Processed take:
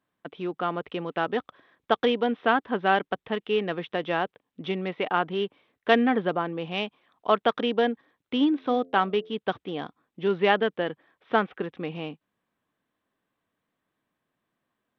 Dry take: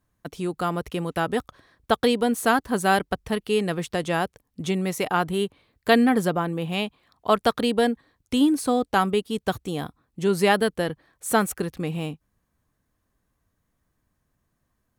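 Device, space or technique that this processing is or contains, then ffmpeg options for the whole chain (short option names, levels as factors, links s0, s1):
Bluetooth headset: -filter_complex "[0:a]asettb=1/sr,asplit=3[s0][s1][s2];[s0]atrim=end=8.494[s3];[s1]atrim=start=8.49:end=9.33,asetpts=PTS-STARTPTS,afade=t=in:d=0.004:c=qsin,afade=t=out:st=0.836:d=0.004:c=qsin,bandreject=f=87.25:t=h:w=4,bandreject=f=174.5:t=h:w=4,bandreject=f=261.75:t=h:w=4,bandreject=f=349:t=h:w=4,bandreject=f=436.25:t=h:w=4,bandreject=f=523.5:t=h:w=4,bandreject=f=610.75:t=h:w=4,bandreject=f=698:t=h:w=4[s4];[s2]atrim=start=9.326[s5];[s3][s4]acrossfade=d=0.004:c1=hsin:c2=qsin[s6];[s6][s5]acrossfade=d=0.004:c1=qsin:c2=hsin,highpass=240,aresample=8000,aresample=44100,volume=0.841" -ar 32000 -c:a sbc -b:a 64k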